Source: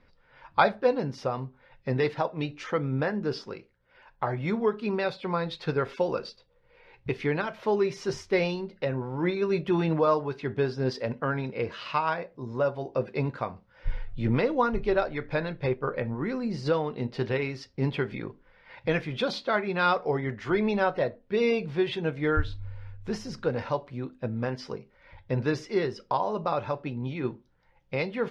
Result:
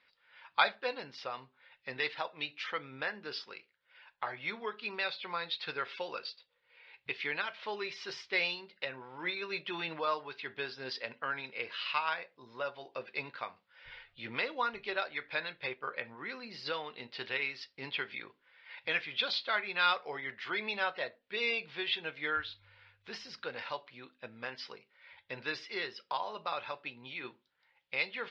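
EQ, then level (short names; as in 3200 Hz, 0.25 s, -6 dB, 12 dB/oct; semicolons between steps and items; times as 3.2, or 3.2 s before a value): band-pass 5400 Hz, Q 0.93; air absorption 420 m; bell 4600 Hz +10.5 dB 2.4 oct; +7.0 dB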